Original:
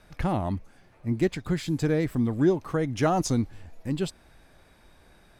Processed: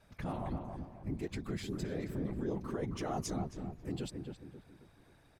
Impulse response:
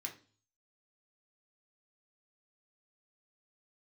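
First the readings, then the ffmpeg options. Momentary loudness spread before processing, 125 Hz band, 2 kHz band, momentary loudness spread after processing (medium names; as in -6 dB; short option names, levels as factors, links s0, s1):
10 LU, -11.5 dB, -13.0 dB, 9 LU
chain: -filter_complex "[0:a]alimiter=limit=0.0891:level=0:latency=1:release=37,afftfilt=real='hypot(re,im)*cos(2*PI*random(0))':imag='hypot(re,im)*sin(2*PI*random(1))':win_size=512:overlap=0.75,asplit=2[s0][s1];[s1]adelay=269,lowpass=f=1400:p=1,volume=0.596,asplit=2[s2][s3];[s3]adelay=269,lowpass=f=1400:p=1,volume=0.41,asplit=2[s4][s5];[s5]adelay=269,lowpass=f=1400:p=1,volume=0.41,asplit=2[s6][s7];[s7]adelay=269,lowpass=f=1400:p=1,volume=0.41,asplit=2[s8][s9];[s9]adelay=269,lowpass=f=1400:p=1,volume=0.41[s10];[s2][s4][s6][s8][s10]amix=inputs=5:normalize=0[s11];[s0][s11]amix=inputs=2:normalize=0,volume=0.708"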